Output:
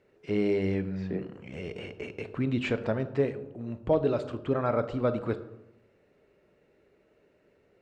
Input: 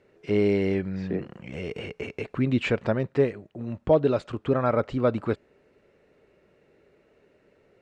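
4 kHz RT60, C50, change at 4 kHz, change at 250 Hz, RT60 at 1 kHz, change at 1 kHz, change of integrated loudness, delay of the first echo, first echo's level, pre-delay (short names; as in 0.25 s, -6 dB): 0.50 s, 13.5 dB, -4.0 dB, -3.5 dB, 0.90 s, -4.0 dB, -4.0 dB, none, none, 18 ms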